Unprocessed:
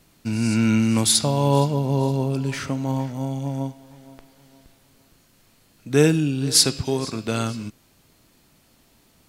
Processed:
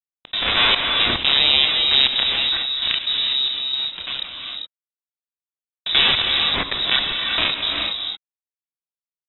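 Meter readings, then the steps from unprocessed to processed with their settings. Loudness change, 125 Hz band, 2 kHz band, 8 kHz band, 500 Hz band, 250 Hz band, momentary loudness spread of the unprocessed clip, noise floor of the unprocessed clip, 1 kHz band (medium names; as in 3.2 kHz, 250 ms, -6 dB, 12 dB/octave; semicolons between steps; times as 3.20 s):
+4.0 dB, -17.5 dB, +12.5 dB, under -40 dB, -9.5 dB, -15.0 dB, 11 LU, -59 dBFS, +2.0 dB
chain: cycle switcher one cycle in 2, inverted; gate -45 dBFS, range -7 dB; peaking EQ 210 Hz +8 dB 0.22 oct; comb 2.6 ms, depth 82%; dynamic bell 1.3 kHz, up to +6 dB, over -38 dBFS, Q 2; peak limiter -8.5 dBFS, peak gain reduction 8.5 dB; companded quantiser 2-bit; chorus voices 4, 0.49 Hz, delay 30 ms, depth 1.6 ms; trance gate ".xx.xxxxx.." 181 bpm -60 dB; gated-style reverb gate 440 ms rising, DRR 6.5 dB; frequency inversion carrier 3.8 kHz; level flattener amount 50%; trim -4 dB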